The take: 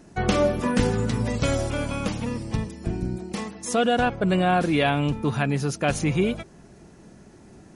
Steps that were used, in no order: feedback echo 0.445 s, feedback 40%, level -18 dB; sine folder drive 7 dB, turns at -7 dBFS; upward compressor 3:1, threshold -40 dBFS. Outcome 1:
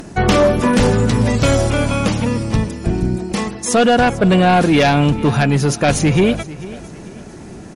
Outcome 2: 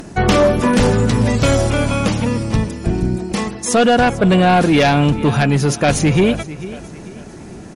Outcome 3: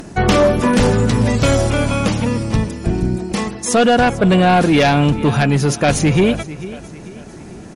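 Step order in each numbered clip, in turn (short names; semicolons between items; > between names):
upward compressor > sine folder > feedback echo; upward compressor > feedback echo > sine folder; feedback echo > upward compressor > sine folder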